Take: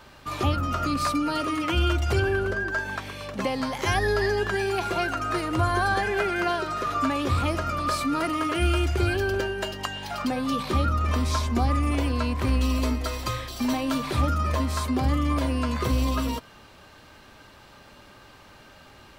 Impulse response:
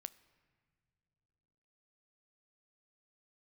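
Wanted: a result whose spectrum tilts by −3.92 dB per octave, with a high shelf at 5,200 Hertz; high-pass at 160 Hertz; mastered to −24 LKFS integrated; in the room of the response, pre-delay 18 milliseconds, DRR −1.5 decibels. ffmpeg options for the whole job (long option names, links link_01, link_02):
-filter_complex "[0:a]highpass=160,highshelf=frequency=5200:gain=3.5,asplit=2[link_01][link_02];[1:a]atrim=start_sample=2205,adelay=18[link_03];[link_02][link_03]afir=irnorm=-1:irlink=0,volume=6.5dB[link_04];[link_01][link_04]amix=inputs=2:normalize=0,volume=-0.5dB"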